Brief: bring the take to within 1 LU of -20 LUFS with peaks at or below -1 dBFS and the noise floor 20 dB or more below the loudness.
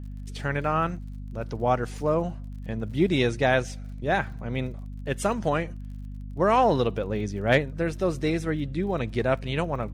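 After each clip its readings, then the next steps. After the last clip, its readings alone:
tick rate 38 per s; hum 50 Hz; highest harmonic 250 Hz; hum level -34 dBFS; loudness -26.5 LUFS; peak level -8.5 dBFS; loudness target -20.0 LUFS
-> de-click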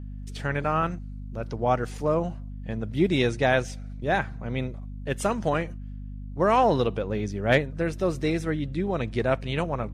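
tick rate 0.10 per s; hum 50 Hz; highest harmonic 250 Hz; hum level -34 dBFS
-> de-hum 50 Hz, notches 5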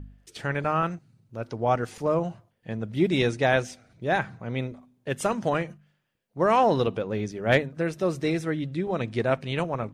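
hum not found; loudness -26.5 LUFS; peak level -8.5 dBFS; loudness target -20.0 LUFS
-> trim +6.5 dB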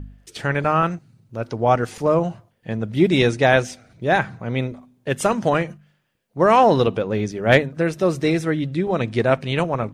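loudness -20.0 LUFS; peak level -2.0 dBFS; noise floor -64 dBFS

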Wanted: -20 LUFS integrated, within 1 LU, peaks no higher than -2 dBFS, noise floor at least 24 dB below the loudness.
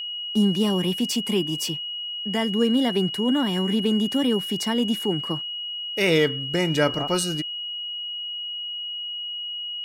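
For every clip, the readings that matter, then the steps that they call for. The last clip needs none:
steady tone 2.9 kHz; tone level -29 dBFS; loudness -24.0 LUFS; peak level -8.0 dBFS; loudness target -20.0 LUFS
-> band-stop 2.9 kHz, Q 30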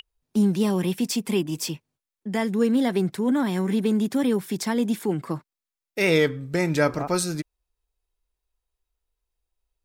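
steady tone not found; loudness -24.0 LUFS; peak level -8.5 dBFS; loudness target -20.0 LUFS
-> trim +4 dB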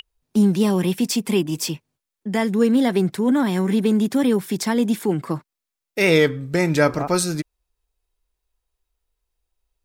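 loudness -20.5 LUFS; peak level -4.5 dBFS; noise floor -85 dBFS

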